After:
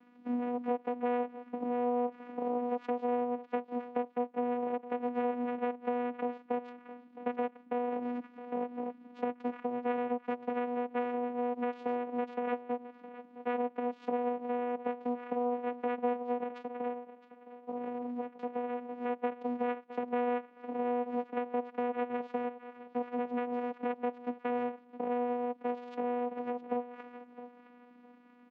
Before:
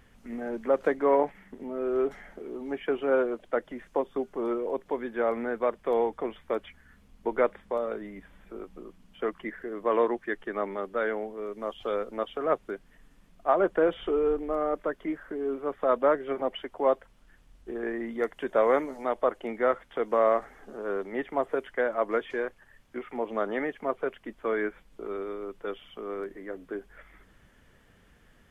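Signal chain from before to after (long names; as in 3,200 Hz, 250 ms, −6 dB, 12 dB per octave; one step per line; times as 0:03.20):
comb filter 5.3 ms, depth 77%
dynamic equaliser 2,100 Hz, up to −7 dB, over −49 dBFS, Q 2.5
leveller curve on the samples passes 1
downward compressor 5 to 1, threshold −33 dBFS, peak gain reduction 17.5 dB
0:16.43–0:18.89: flanger 1.2 Hz, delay 8.7 ms, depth 6.6 ms, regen −77%
channel vocoder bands 4, saw 244 Hz
band-pass filter 190–3,100 Hz
repeating echo 664 ms, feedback 19%, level −15 dB
level +2 dB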